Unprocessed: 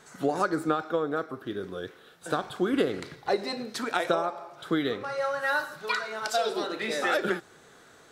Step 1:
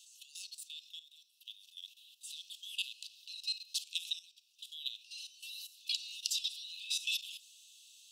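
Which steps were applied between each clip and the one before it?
Chebyshev high-pass filter 2,600 Hz, order 10
output level in coarse steps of 13 dB
level +5.5 dB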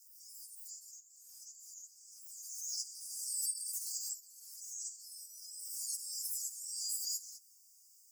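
partials spread apart or drawn together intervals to 126%
background raised ahead of every attack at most 29 dB per second
level +2 dB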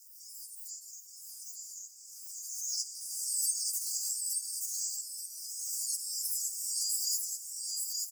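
repeating echo 876 ms, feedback 30%, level −3 dB
level +5 dB

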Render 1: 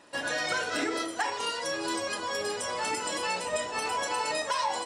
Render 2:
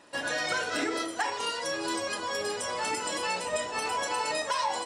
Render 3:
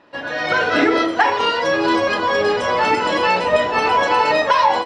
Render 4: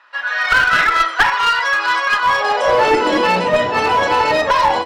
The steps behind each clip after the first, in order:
no processing that can be heard
automatic gain control gain up to 11 dB; high-frequency loss of the air 250 metres; level +5.5 dB
high-pass filter sweep 1,300 Hz → 72 Hz, 0:02.20–0:03.90; asymmetric clip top −12.5 dBFS; level +1.5 dB

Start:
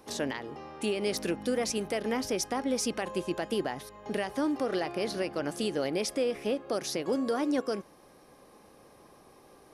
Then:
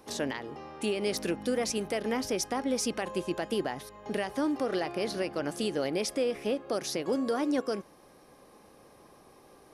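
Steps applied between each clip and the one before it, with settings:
no processing that can be heard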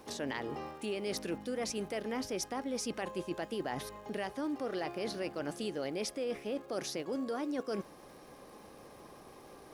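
high-shelf EQ 7,800 Hz −4 dB
reversed playback
downward compressor, threshold −37 dBFS, peak gain reduction 12 dB
reversed playback
surface crackle 420 per second −57 dBFS
level +3 dB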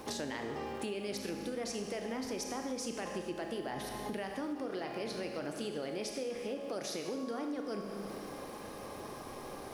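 four-comb reverb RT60 1.4 s, combs from 27 ms, DRR 4 dB
downward compressor 6 to 1, threshold −43 dBFS, peak gain reduction 12.5 dB
level +7 dB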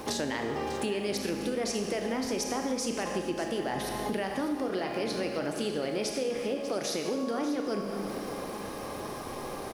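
single-tap delay 595 ms −13 dB
level +7 dB

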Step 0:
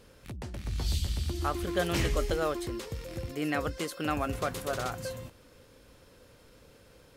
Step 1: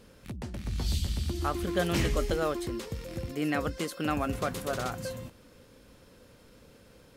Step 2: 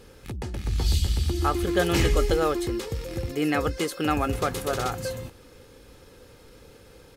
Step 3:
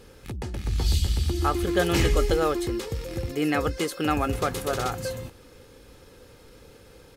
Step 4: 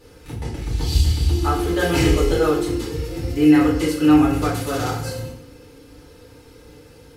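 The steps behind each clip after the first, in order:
parametric band 210 Hz +5.5 dB 0.8 octaves
comb filter 2.4 ms, depth 42%; level +5 dB
no processing that can be heard
feedback delay network reverb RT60 0.62 s, low-frequency decay 1.4×, high-frequency decay 0.95×, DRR −7 dB; level −4.5 dB

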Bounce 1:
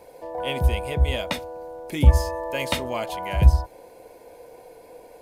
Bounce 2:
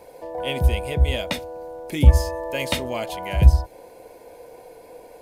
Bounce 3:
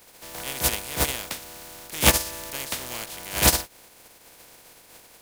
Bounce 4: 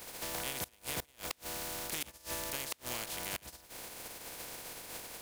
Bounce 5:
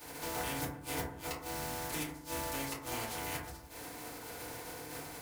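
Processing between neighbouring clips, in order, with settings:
dynamic equaliser 1,100 Hz, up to −5 dB, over −43 dBFS, Q 1.4; level +2 dB
compressing power law on the bin magnitudes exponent 0.24; level −6.5 dB
gate with flip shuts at −15 dBFS, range −31 dB; downward compressor 5 to 1, threshold −41 dBFS, peak gain reduction 14.5 dB; level +4.5 dB
feedback delay network reverb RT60 0.71 s, low-frequency decay 1.35×, high-frequency decay 0.3×, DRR −9.5 dB; level −7.5 dB

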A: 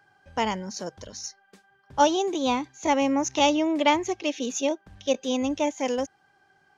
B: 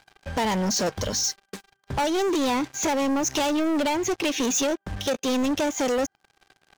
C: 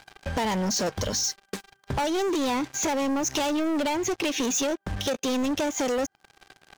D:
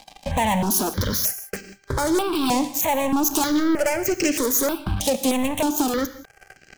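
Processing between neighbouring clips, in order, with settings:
downward compressor 16 to 1, threshold −29 dBFS, peak gain reduction 16 dB; leveller curve on the samples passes 5; level −1.5 dB
downward compressor 2.5 to 1, threshold −36 dBFS, peak gain reduction 9 dB; level +6.5 dB
phase distortion by the signal itself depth 0.1 ms; reverb whose tail is shaped and stops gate 200 ms flat, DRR 11.5 dB; step-sequenced phaser 3.2 Hz 390–3,600 Hz; level +8 dB

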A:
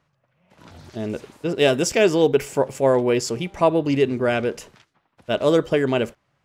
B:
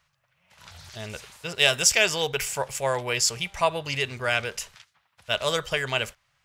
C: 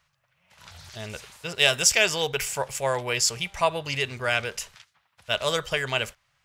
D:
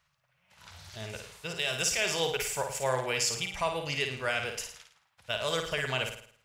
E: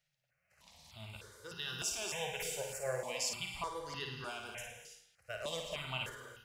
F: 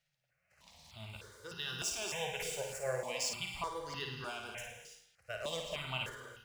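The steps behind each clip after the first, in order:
guitar amp tone stack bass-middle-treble 10-0-10; level +7.5 dB
no processing that can be heard
brickwall limiter −13.5 dBFS, peak gain reduction 10 dB; flutter between parallel walls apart 9.3 metres, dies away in 0.54 s; level −4.5 dB
on a send at −5 dB: convolution reverb, pre-delay 3 ms; on the sum: step-sequenced phaser 3.3 Hz 290–2,300 Hz; level −7 dB
running median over 3 samples; level +1 dB

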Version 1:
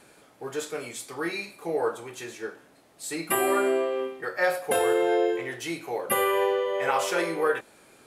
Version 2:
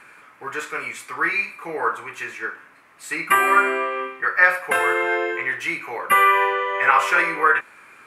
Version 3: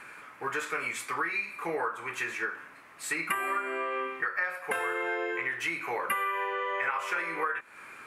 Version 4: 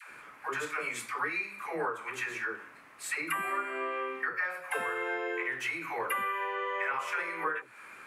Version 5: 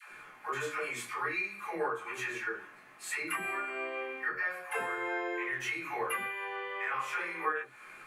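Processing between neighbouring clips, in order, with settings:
flat-topped bell 1,600 Hz +15.5 dB; level −2 dB
downward compressor 10 to 1, threshold −28 dBFS, peak gain reduction 18.5 dB
all-pass dispersion lows, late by 119 ms, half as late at 440 Hz; level −2 dB
convolution reverb, pre-delay 5 ms, DRR −4.5 dB; level −7 dB

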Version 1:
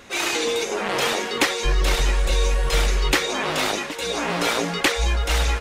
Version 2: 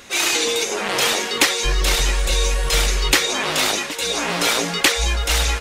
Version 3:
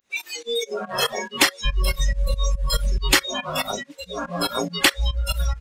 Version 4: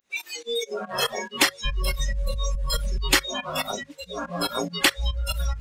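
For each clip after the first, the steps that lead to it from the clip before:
high-shelf EQ 2,700 Hz +9 dB
fake sidechain pumping 141 BPM, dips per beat 2, −22 dB, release 113 ms; noise reduction from a noise print of the clip's start 26 dB
mains-hum notches 50/100/150 Hz; reversed playback; upward compression, threshold −32 dBFS; reversed playback; level −2.5 dB

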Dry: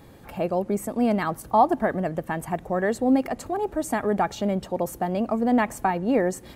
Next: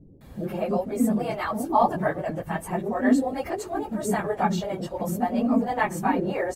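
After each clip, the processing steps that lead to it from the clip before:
random phases in long frames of 50 ms
multiband delay without the direct sound lows, highs 210 ms, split 420 Hz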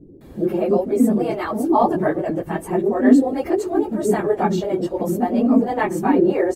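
parametric band 350 Hz +13.5 dB 0.85 octaves
level +1 dB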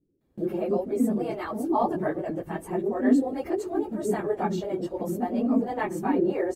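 noise gate with hold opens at −29 dBFS
level −8 dB

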